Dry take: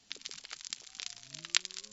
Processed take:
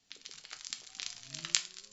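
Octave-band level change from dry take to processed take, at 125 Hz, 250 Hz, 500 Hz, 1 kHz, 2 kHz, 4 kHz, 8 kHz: +4.0 dB, +2.0 dB, -2.0 dB, -2.5 dB, -3.5 dB, -1.0 dB, n/a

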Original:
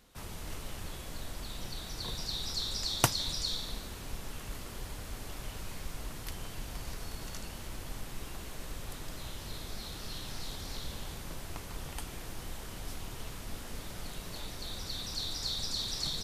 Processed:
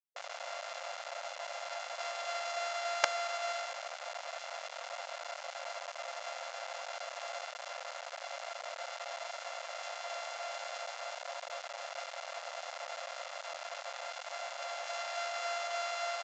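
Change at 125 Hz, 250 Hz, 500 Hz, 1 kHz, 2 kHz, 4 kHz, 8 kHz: under -40 dB, under -40 dB, +7.5 dB, +7.5 dB, +6.0 dB, -6.0 dB, -5.0 dB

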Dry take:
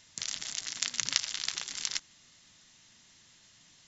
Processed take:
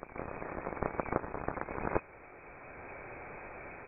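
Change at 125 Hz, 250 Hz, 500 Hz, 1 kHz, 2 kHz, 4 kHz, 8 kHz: +15.0 dB, +17.0 dB, +24.0 dB, +13.0 dB, -2.0 dB, under -40 dB, n/a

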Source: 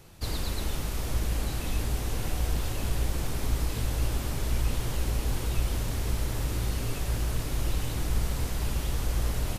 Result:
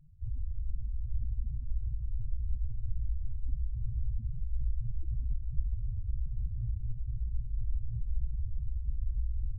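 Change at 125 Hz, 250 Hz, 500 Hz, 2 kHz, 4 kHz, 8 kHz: -5.5 dB, -20.0 dB, under -40 dB, under -40 dB, under -40 dB, under -40 dB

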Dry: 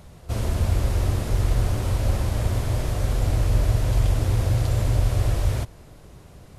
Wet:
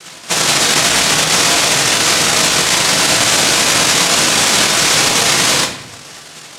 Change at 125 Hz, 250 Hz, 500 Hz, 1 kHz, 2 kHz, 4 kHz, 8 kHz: -6.5, +10.0, +12.5, +19.5, +26.0, +29.0, +29.0 dB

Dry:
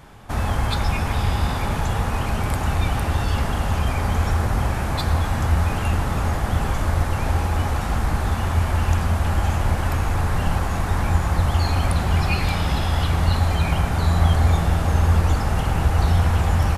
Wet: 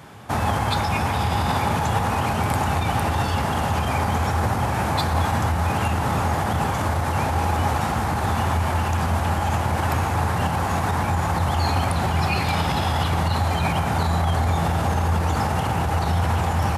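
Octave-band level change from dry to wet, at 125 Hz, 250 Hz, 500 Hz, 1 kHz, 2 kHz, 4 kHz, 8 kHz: -2.5, +1.0, +2.0, +4.5, +1.5, +1.0, +1.0 dB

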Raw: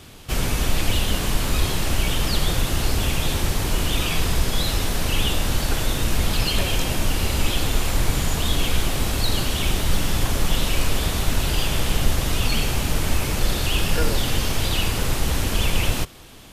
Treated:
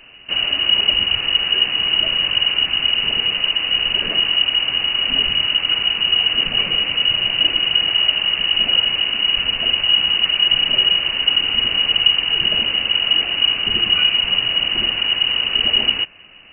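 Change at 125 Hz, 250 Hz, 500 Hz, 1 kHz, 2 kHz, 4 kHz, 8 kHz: -15.5 dB, -8.0 dB, -5.5 dB, -3.0 dB, +7.5 dB, +15.5 dB, under -40 dB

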